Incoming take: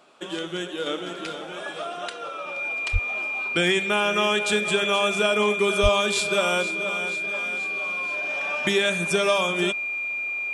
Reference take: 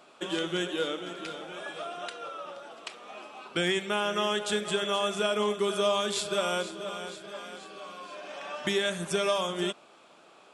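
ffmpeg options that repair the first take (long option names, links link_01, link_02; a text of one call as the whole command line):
ffmpeg -i in.wav -filter_complex "[0:a]bandreject=frequency=2400:width=30,asplit=3[link_01][link_02][link_03];[link_01]afade=type=out:start_time=2.92:duration=0.02[link_04];[link_02]highpass=frequency=140:width=0.5412,highpass=frequency=140:width=1.3066,afade=type=in:start_time=2.92:duration=0.02,afade=type=out:start_time=3.04:duration=0.02[link_05];[link_03]afade=type=in:start_time=3.04:duration=0.02[link_06];[link_04][link_05][link_06]amix=inputs=3:normalize=0,asplit=3[link_07][link_08][link_09];[link_07]afade=type=out:start_time=5.82:duration=0.02[link_10];[link_08]highpass=frequency=140:width=0.5412,highpass=frequency=140:width=1.3066,afade=type=in:start_time=5.82:duration=0.02,afade=type=out:start_time=5.94:duration=0.02[link_11];[link_09]afade=type=in:start_time=5.94:duration=0.02[link_12];[link_10][link_11][link_12]amix=inputs=3:normalize=0,asetnsamples=nb_out_samples=441:pad=0,asendcmd='0.86 volume volume -5.5dB',volume=0dB" out.wav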